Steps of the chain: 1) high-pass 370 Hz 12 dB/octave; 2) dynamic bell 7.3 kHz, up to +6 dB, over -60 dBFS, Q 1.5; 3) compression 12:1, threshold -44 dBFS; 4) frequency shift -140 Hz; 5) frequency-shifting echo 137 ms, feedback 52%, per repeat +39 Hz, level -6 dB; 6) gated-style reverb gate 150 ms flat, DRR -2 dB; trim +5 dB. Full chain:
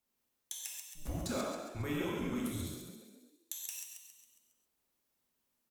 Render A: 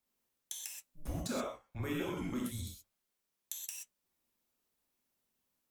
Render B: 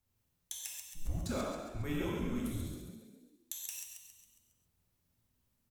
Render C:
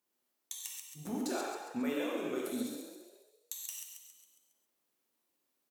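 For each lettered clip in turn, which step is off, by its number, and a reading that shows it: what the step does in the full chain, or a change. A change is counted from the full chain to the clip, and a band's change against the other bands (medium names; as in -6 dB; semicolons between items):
5, echo-to-direct 4.0 dB to 2.0 dB; 1, 125 Hz band +3.0 dB; 4, 125 Hz band -13.5 dB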